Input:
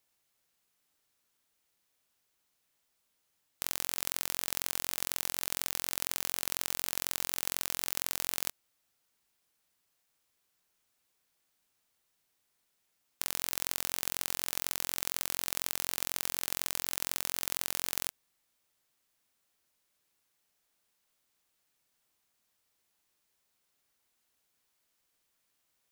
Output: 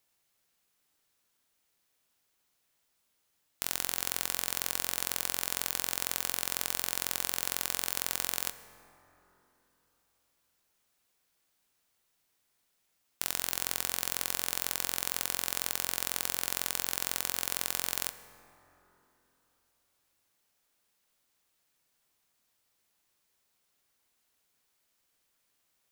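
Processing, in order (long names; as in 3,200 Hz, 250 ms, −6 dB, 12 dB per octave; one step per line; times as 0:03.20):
dense smooth reverb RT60 3.8 s, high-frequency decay 0.35×, DRR 11.5 dB
level +1.5 dB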